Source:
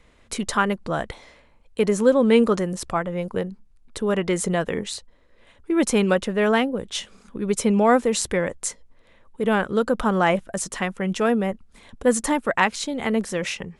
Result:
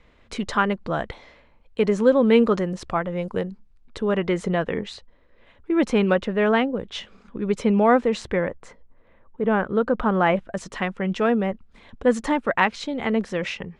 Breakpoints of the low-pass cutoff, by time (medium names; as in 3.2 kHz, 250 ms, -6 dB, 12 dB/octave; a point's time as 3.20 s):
2.98 s 4.2 kHz
3.32 s 6.9 kHz
4.25 s 3.3 kHz
8.09 s 3.3 kHz
8.68 s 1.7 kHz
9.50 s 1.7 kHz
10.72 s 3.8 kHz